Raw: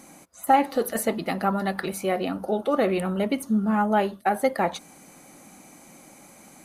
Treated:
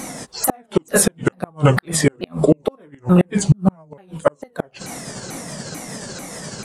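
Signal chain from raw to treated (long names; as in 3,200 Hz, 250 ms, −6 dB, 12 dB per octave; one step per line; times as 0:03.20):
pitch shifter swept by a sawtooth −7.5 semitones, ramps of 442 ms
gate with flip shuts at −17 dBFS, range −41 dB
boost into a limiter +20.5 dB
level −2 dB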